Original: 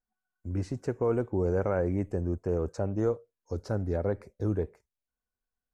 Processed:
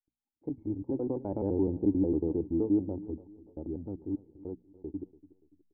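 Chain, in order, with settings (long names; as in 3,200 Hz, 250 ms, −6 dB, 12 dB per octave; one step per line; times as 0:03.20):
slices reordered back to front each 90 ms, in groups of 5
source passing by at 0:01.87, 33 m/s, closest 29 metres
mains-hum notches 60/120/180/240 Hz
in parallel at −9.5 dB: slack as between gear wheels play −41 dBFS
on the sum: formant resonators in series u
on a send: repeating echo 288 ms, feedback 41%, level −19 dB
on the sum: level +7.5 dB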